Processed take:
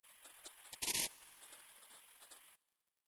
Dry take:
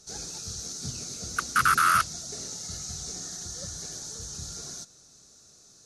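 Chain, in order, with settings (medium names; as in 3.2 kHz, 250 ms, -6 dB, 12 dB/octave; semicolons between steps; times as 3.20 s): spectral gate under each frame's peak -25 dB weak; bit crusher 11-bit; tempo 1.9×; on a send: reverberation RT60 2.5 s, pre-delay 38 ms, DRR 23.5 dB; on the sum: trim -3 dB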